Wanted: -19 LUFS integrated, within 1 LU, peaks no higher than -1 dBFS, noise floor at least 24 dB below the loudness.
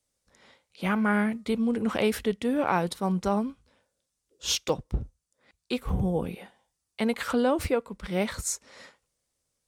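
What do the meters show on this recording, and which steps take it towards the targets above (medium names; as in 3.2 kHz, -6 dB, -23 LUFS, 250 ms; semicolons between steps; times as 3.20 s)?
dropouts 2; longest dropout 2.1 ms; loudness -28.5 LUFS; peak level -11.0 dBFS; loudness target -19.0 LUFS
-> interpolate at 4.69/5.89 s, 2.1 ms; trim +9.5 dB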